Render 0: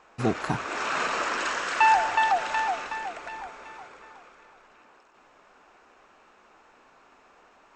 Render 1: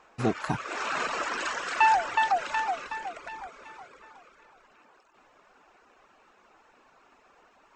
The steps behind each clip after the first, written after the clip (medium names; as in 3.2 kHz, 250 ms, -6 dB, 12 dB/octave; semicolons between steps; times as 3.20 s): reverb removal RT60 0.72 s; trim -1 dB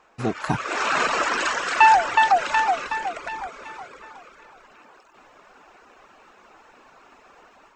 level rider gain up to 8.5 dB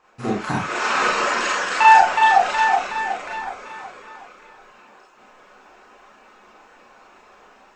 Schroeder reverb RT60 0.33 s, combs from 30 ms, DRR -5 dB; trim -4 dB